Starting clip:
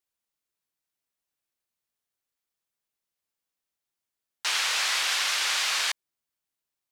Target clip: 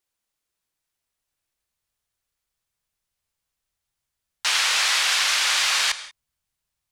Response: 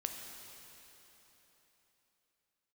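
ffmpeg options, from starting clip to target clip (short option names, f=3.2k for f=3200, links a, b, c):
-filter_complex "[0:a]asubboost=boost=7:cutoff=110,asplit=2[a][b];[1:a]atrim=start_sample=2205,atrim=end_sample=4410,asetrate=22491,aresample=44100[c];[b][c]afir=irnorm=-1:irlink=0,volume=-3.5dB[d];[a][d]amix=inputs=2:normalize=0"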